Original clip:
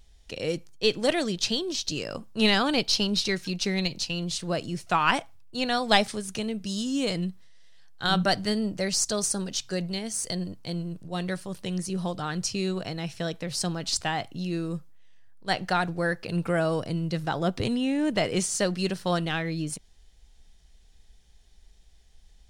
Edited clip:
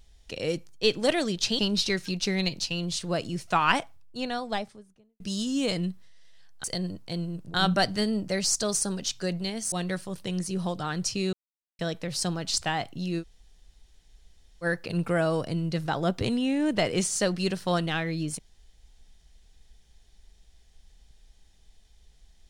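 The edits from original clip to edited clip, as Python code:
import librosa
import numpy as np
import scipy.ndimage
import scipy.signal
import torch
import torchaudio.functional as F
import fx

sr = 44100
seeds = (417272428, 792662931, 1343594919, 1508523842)

y = fx.studio_fade_out(x, sr, start_s=5.1, length_s=1.49)
y = fx.edit(y, sr, fx.cut(start_s=1.59, length_s=1.39),
    fx.move(start_s=10.21, length_s=0.9, to_s=8.03),
    fx.silence(start_s=12.72, length_s=0.46),
    fx.room_tone_fill(start_s=14.6, length_s=1.43, crossfade_s=0.06), tone=tone)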